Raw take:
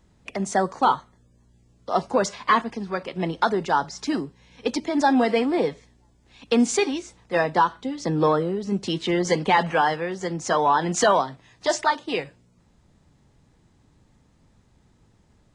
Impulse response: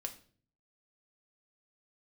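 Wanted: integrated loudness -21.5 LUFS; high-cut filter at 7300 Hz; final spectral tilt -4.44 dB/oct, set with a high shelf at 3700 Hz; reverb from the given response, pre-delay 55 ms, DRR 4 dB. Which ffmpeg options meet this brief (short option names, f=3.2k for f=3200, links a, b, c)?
-filter_complex "[0:a]lowpass=7.3k,highshelf=f=3.7k:g=-8.5,asplit=2[a][b];[1:a]atrim=start_sample=2205,adelay=55[c];[b][c]afir=irnorm=-1:irlink=0,volume=-2.5dB[d];[a][d]amix=inputs=2:normalize=0,volume=1dB"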